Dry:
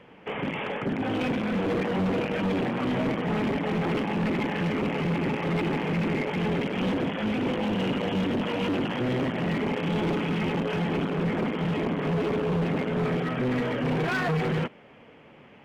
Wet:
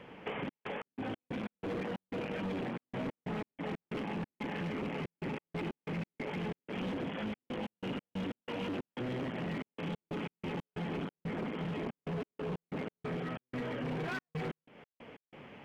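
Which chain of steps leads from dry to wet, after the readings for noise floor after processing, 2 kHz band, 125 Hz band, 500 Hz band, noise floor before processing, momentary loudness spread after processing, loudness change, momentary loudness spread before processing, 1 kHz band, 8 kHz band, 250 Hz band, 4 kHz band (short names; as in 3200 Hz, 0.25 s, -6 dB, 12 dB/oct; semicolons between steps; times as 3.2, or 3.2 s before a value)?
under -85 dBFS, -11.5 dB, -12.5 dB, -12.0 dB, -52 dBFS, 4 LU, -12.0 dB, 1 LU, -12.0 dB, n/a, -12.5 dB, -11.5 dB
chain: compressor, threshold -36 dBFS, peak gain reduction 11 dB; step gate "xxx.x.x.x.xx.x" 92 bpm -60 dB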